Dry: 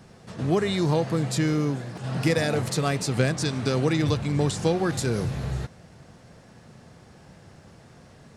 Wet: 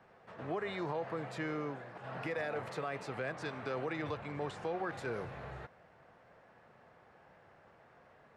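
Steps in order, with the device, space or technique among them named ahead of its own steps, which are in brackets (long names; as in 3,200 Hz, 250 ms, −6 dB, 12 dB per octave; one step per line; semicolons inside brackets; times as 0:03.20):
DJ mixer with the lows and highs turned down (three-way crossover with the lows and the highs turned down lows −16 dB, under 460 Hz, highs −23 dB, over 2,500 Hz; brickwall limiter −23.5 dBFS, peak gain reduction 7.5 dB)
level −4.5 dB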